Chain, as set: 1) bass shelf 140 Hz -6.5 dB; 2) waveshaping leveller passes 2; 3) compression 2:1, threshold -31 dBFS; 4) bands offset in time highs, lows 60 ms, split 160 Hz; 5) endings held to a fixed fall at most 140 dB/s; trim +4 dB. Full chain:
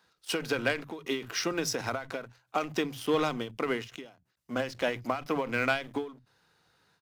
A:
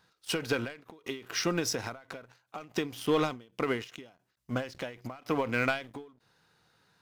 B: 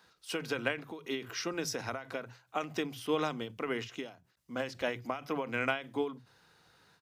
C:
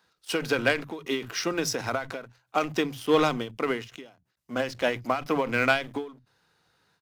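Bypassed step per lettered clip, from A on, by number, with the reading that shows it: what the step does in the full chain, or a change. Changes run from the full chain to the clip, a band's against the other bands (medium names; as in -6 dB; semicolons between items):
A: 4, momentary loudness spread change +8 LU; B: 2, crest factor change +3.5 dB; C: 3, mean gain reduction 3.5 dB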